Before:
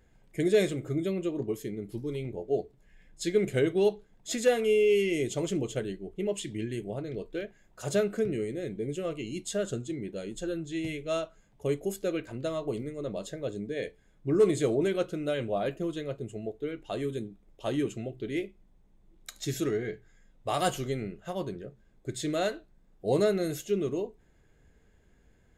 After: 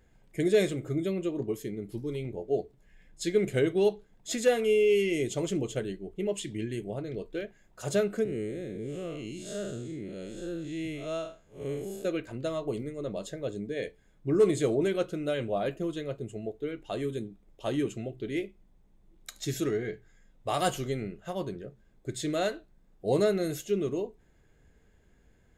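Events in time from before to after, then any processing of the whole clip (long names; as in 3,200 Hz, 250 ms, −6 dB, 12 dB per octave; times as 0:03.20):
0:08.24–0:12.05: spectrum smeared in time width 160 ms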